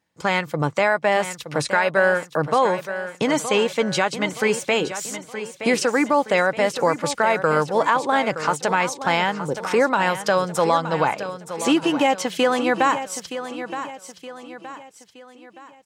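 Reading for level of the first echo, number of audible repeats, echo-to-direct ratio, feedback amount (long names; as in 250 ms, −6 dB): −11.0 dB, 4, −10.0 dB, 43%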